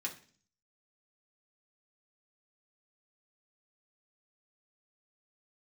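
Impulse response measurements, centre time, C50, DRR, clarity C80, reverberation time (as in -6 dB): 12 ms, 12.5 dB, -2.0 dB, 17.0 dB, 0.45 s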